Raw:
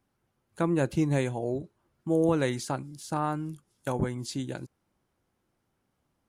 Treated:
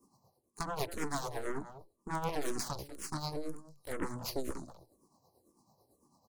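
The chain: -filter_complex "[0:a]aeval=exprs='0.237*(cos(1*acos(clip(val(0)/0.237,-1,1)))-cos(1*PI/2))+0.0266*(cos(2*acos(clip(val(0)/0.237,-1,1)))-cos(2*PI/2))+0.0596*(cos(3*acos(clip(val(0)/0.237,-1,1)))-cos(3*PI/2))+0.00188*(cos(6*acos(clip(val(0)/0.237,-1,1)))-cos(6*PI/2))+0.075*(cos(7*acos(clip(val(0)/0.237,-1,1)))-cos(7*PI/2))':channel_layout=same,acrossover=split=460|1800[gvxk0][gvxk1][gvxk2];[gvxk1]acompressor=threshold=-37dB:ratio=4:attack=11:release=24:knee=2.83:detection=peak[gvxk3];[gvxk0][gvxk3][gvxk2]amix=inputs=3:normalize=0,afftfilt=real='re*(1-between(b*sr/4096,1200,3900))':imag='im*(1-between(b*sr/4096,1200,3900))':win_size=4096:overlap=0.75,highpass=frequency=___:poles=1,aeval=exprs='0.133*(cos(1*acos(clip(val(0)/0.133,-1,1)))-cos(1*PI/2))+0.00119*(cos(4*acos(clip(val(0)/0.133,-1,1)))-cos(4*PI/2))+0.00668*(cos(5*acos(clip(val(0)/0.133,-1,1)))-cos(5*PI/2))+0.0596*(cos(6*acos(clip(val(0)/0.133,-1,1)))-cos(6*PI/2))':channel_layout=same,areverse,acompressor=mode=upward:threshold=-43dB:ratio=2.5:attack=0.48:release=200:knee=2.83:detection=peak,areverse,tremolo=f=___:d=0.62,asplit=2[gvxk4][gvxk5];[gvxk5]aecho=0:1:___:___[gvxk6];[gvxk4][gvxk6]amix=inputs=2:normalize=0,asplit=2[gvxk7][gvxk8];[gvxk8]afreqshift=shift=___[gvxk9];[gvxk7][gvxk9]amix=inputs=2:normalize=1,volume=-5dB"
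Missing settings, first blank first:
220, 9, 193, 0.251, -2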